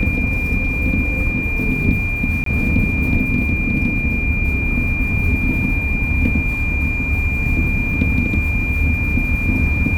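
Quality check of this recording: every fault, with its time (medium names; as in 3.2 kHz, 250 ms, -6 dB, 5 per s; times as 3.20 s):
whine 2.4 kHz -21 dBFS
2.44–2.46 s: dropout 23 ms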